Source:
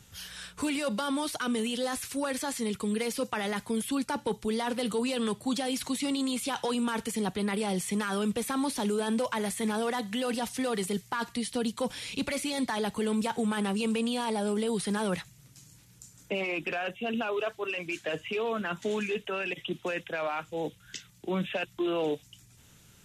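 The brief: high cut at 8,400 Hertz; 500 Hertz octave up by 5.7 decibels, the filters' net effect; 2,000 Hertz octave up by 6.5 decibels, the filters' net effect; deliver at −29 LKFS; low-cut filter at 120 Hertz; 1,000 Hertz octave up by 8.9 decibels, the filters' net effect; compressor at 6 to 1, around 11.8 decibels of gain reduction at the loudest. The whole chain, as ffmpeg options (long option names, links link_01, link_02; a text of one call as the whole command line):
ffmpeg -i in.wav -af "highpass=120,lowpass=8400,equalizer=frequency=500:width_type=o:gain=4.5,equalizer=frequency=1000:width_type=o:gain=8.5,equalizer=frequency=2000:width_type=o:gain=5.5,acompressor=threshold=-33dB:ratio=6,volume=7.5dB" out.wav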